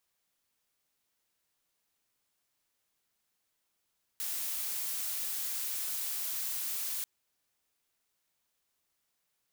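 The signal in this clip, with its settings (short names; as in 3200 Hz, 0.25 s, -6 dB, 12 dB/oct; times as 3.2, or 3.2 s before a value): noise blue, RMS -35.5 dBFS 2.84 s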